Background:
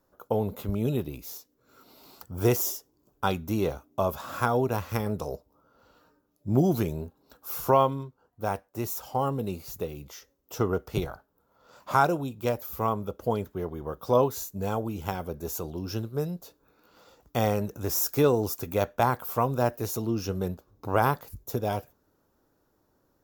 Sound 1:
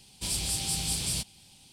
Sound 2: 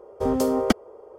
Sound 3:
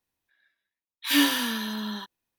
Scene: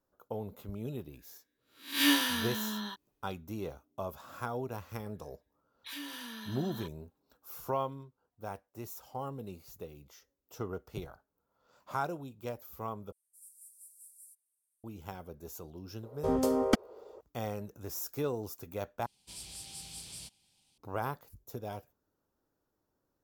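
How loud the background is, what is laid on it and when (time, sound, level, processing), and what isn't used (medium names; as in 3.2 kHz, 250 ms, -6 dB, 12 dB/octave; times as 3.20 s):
background -12 dB
0.90 s: add 3 -5.5 dB + reverse spectral sustain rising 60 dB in 0.39 s
4.82 s: add 3 -8.5 dB + compression 4:1, threshold -33 dBFS
13.12 s: replace with 1 -15 dB + inverse Chebyshev high-pass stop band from 2.7 kHz, stop band 70 dB
16.03 s: add 2 -6 dB
19.06 s: replace with 1 -15 dB + bass shelf 280 Hz -5.5 dB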